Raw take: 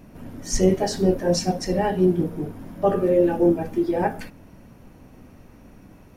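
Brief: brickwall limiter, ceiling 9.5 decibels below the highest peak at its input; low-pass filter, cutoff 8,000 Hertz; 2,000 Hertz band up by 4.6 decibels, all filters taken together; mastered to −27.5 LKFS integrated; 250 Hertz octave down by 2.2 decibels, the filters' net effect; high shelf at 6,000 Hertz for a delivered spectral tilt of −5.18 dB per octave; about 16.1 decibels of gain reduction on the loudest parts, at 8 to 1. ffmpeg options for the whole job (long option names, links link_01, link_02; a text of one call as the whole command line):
ffmpeg -i in.wav -af "lowpass=8000,equalizer=frequency=250:width_type=o:gain=-4,equalizer=frequency=2000:width_type=o:gain=6,highshelf=frequency=6000:gain=-3.5,acompressor=threshold=-32dB:ratio=8,volume=14dB,alimiter=limit=-17dB:level=0:latency=1" out.wav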